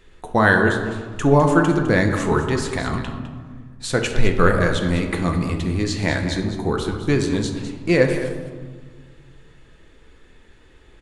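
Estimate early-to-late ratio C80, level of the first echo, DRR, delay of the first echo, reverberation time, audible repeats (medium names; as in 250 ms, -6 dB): 7.0 dB, -11.5 dB, 3.0 dB, 206 ms, 1.6 s, 1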